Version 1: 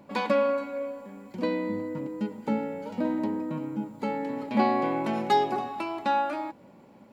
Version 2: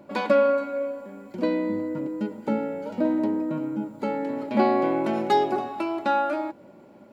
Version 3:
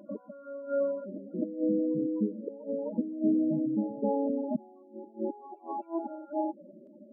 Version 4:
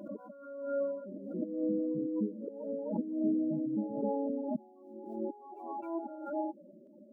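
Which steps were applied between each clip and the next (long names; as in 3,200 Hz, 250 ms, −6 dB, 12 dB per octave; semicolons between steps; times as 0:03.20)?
hollow resonant body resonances 350/600/1,400 Hz, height 8 dB, ringing for 30 ms
gate with flip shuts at −16 dBFS, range −31 dB; spectral peaks only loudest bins 8; backwards echo 258 ms −11.5 dB
background raised ahead of every attack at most 64 dB per second; level −4.5 dB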